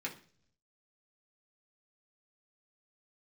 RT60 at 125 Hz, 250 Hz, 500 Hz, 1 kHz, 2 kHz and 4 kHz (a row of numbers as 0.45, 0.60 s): 1.0, 0.75, 0.55, 0.40, 0.45, 0.55 s